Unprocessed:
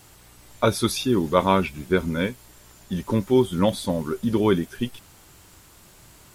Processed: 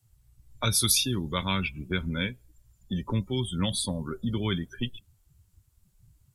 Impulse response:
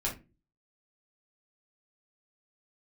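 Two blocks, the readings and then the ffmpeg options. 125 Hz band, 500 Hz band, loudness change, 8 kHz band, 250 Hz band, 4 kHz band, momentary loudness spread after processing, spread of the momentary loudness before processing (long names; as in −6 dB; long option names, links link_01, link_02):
−2.5 dB, −14.5 dB, −5.0 dB, +6.5 dB, −8.0 dB, +2.5 dB, 12 LU, 10 LU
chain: -filter_complex "[0:a]afftdn=noise_reduction=30:noise_floor=-39,highshelf=frequency=5500:gain=11.5,acrossover=split=170|1700|2400[link_01][link_02][link_03][link_04];[link_02]acompressor=threshold=-35dB:ratio=6[link_05];[link_01][link_05][link_03][link_04]amix=inputs=4:normalize=0"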